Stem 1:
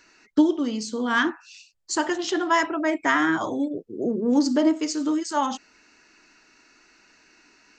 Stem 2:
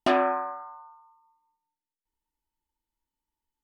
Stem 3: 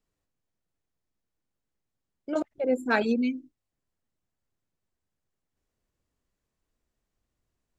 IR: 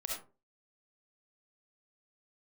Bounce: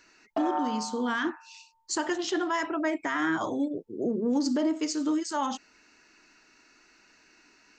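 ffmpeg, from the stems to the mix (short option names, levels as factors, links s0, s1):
-filter_complex "[0:a]volume=0.708[s0];[1:a]bandpass=f=800:t=q:w=2:csg=0,aecho=1:1:4.5:0.65,adelay=300,volume=1.12[s1];[s0][s1]amix=inputs=2:normalize=0,alimiter=limit=0.112:level=0:latency=1:release=78"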